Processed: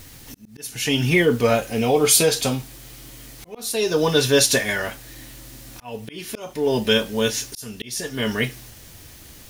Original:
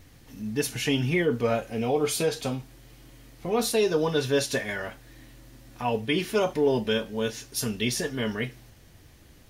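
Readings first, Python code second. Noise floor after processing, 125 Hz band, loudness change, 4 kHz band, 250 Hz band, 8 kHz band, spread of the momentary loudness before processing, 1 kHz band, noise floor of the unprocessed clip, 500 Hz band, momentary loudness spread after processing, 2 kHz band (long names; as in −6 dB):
−44 dBFS, +5.0 dB, +7.0 dB, +8.5 dB, +4.0 dB, +11.5 dB, 9 LU, +3.5 dB, −53 dBFS, +4.5 dB, 23 LU, +7.0 dB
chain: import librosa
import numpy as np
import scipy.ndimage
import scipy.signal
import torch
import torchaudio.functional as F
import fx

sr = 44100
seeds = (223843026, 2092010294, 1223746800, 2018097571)

p1 = fx.high_shelf(x, sr, hz=3700.0, db=10.5)
p2 = fx.quant_dither(p1, sr, seeds[0], bits=8, dither='triangular')
p3 = p1 + (p2 * 10.0 ** (-6.0 / 20.0))
p4 = fx.auto_swell(p3, sr, attack_ms=550.0)
y = p4 * 10.0 ** (3.0 / 20.0)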